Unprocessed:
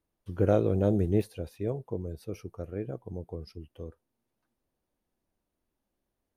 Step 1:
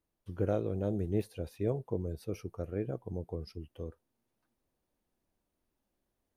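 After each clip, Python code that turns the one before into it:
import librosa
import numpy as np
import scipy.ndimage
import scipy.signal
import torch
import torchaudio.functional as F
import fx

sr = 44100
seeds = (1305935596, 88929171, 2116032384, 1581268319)

y = fx.rider(x, sr, range_db=4, speed_s=0.5)
y = F.gain(torch.from_numpy(y), -4.0).numpy()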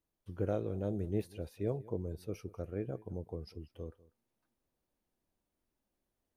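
y = x + 10.0 ** (-21.0 / 20.0) * np.pad(x, (int(194 * sr / 1000.0), 0))[:len(x)]
y = F.gain(torch.from_numpy(y), -3.0).numpy()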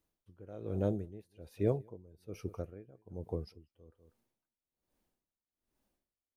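y = x * 10.0 ** (-23 * (0.5 - 0.5 * np.cos(2.0 * np.pi * 1.2 * np.arange(len(x)) / sr)) / 20.0)
y = F.gain(torch.from_numpy(y), 5.0).numpy()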